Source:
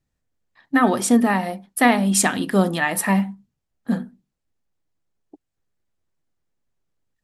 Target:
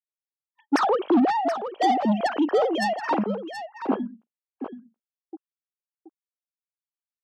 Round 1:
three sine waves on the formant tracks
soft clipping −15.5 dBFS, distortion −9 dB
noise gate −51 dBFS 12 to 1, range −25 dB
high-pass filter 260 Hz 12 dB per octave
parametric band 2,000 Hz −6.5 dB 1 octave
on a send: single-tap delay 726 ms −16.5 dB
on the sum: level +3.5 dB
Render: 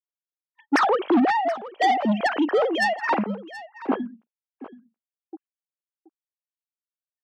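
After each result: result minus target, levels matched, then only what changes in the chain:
2,000 Hz band +5.5 dB; echo-to-direct −6.5 dB
change: parametric band 2,000 Hz −15 dB 1 octave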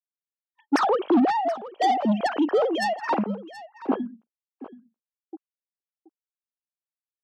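echo-to-direct −6.5 dB
change: single-tap delay 726 ms −10 dB

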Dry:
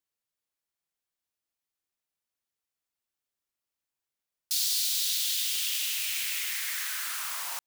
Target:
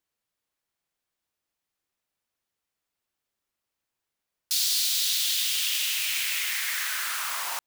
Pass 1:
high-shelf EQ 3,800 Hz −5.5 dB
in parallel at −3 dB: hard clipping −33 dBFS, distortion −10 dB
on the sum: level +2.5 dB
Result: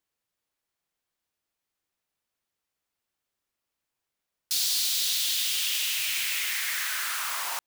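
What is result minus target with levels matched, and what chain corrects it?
hard clipping: distortion +13 dB
high-shelf EQ 3,800 Hz −5.5 dB
in parallel at −3 dB: hard clipping −26 dBFS, distortion −23 dB
on the sum: level +2.5 dB

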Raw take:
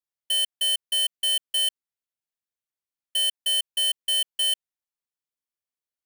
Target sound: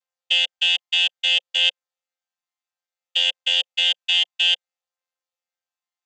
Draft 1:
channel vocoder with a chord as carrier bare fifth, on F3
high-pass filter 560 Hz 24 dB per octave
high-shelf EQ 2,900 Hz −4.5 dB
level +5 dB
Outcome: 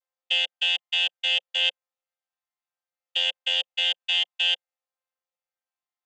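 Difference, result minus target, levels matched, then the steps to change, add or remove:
8,000 Hz band −3.0 dB
change: high-shelf EQ 2,900 Hz +4.5 dB

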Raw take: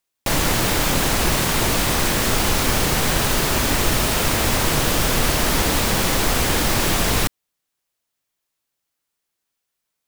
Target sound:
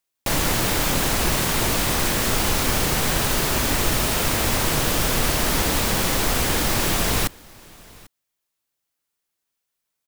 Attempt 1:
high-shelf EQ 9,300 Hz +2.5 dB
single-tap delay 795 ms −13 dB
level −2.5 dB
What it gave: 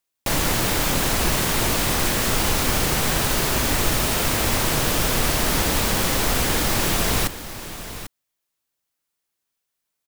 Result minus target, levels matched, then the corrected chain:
echo-to-direct +11.5 dB
high-shelf EQ 9,300 Hz +2.5 dB
single-tap delay 795 ms −24.5 dB
level −2.5 dB

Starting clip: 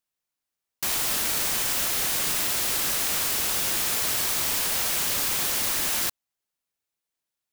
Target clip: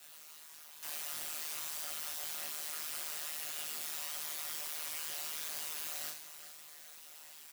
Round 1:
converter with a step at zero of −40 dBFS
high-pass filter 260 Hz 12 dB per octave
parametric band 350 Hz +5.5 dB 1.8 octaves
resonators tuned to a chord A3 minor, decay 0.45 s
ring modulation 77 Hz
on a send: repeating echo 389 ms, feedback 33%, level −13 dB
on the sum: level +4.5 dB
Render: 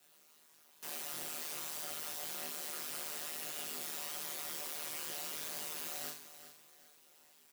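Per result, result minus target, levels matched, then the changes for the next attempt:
250 Hz band +9.0 dB; converter with a step at zero: distortion −10 dB
change: parametric band 350 Hz −5.5 dB 1.8 octaves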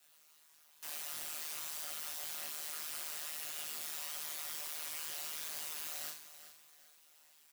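converter with a step at zero: distortion −10 dB
change: converter with a step at zero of −28.5 dBFS

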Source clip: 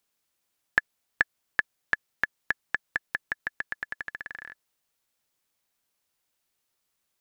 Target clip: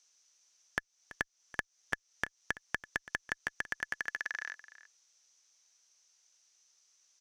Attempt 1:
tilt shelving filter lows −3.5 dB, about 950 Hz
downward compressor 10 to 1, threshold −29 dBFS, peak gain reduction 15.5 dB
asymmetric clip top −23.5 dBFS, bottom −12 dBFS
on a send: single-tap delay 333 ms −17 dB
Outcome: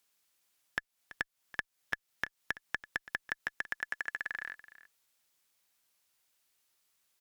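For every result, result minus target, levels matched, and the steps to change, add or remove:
8,000 Hz band −6.5 dB; 500 Hz band −3.5 dB
add first: low-pass with resonance 6,000 Hz, resonance Q 9.5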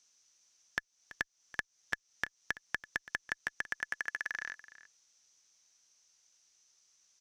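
500 Hz band −4.0 dB
add after downward compressor: high-pass filter 380 Hz 12 dB per octave

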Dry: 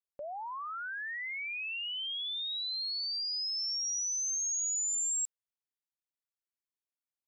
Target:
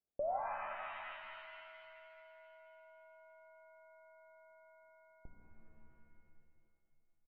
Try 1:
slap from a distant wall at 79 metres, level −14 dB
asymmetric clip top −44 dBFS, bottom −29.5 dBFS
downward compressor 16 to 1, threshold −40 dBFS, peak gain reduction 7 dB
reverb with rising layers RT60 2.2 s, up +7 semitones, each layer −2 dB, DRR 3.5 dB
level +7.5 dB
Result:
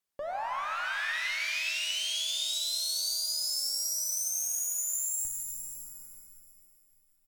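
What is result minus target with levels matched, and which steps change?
1,000 Hz band −7.5 dB
add after downward compressor: Butterworth low-pass 790 Hz 48 dB per octave

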